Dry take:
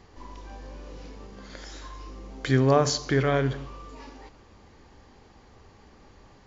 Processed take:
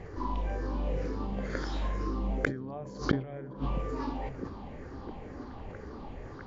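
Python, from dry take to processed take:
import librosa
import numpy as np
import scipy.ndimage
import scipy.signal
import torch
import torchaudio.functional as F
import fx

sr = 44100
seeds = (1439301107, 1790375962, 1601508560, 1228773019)

p1 = fx.spec_ripple(x, sr, per_octave=0.5, drift_hz=-2.1, depth_db=10)
p2 = fx.lowpass(p1, sr, hz=1100.0, slope=6)
p3 = fx.gate_flip(p2, sr, shuts_db=-20.0, range_db=-30)
p4 = p3 + fx.echo_stepped(p3, sr, ms=660, hz=150.0, octaves=0.7, feedback_pct=70, wet_db=-6.5, dry=0)
p5 = fx.sustainer(p4, sr, db_per_s=140.0)
y = p5 * 10.0 ** (9.0 / 20.0)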